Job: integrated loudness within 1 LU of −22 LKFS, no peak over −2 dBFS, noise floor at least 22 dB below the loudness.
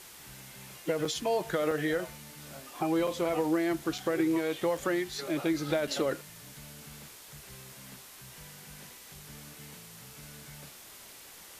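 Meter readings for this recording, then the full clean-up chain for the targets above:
number of dropouts 6; longest dropout 4.1 ms; background noise floor −51 dBFS; target noise floor −53 dBFS; integrated loudness −31.0 LKFS; sample peak −17.5 dBFS; target loudness −22.0 LKFS
→ repair the gap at 0:01.05/0:01.71/0:03.07/0:03.98/0:04.77/0:05.87, 4.1 ms
broadband denoise 6 dB, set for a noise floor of −51 dBFS
level +9 dB

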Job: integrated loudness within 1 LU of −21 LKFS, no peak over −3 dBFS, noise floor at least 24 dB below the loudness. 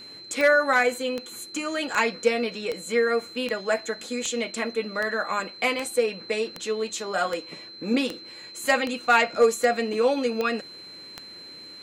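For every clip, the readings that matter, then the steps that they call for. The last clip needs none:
number of clicks 15; interfering tone 4,100 Hz; level of the tone −41 dBFS; integrated loudness −25.0 LKFS; sample peak −9.0 dBFS; target loudness −21.0 LKFS
→ click removal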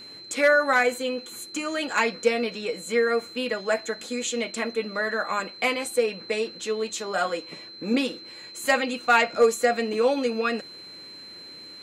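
number of clicks 0; interfering tone 4,100 Hz; level of the tone −41 dBFS
→ notch filter 4,100 Hz, Q 30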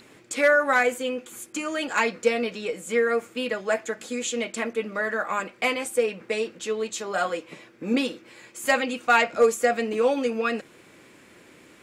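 interfering tone none found; integrated loudness −25.0 LKFS; sample peak −9.0 dBFS; target loudness −21.0 LKFS
→ level +4 dB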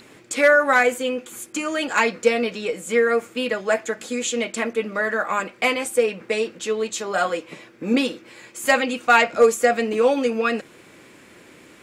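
integrated loudness −21.0 LKFS; sample peak −5.0 dBFS; background noise floor −49 dBFS

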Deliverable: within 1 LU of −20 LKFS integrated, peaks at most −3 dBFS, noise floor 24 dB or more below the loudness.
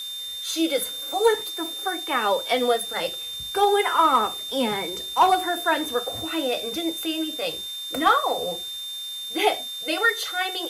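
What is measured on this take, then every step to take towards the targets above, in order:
interfering tone 3,600 Hz; level of the tone −31 dBFS; background noise floor −34 dBFS; target noise floor −48 dBFS; integrated loudness −24.0 LKFS; sample peak −8.0 dBFS; target loudness −20.0 LKFS
→ notch filter 3,600 Hz, Q 30
broadband denoise 14 dB, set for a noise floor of −34 dBFS
level +4 dB

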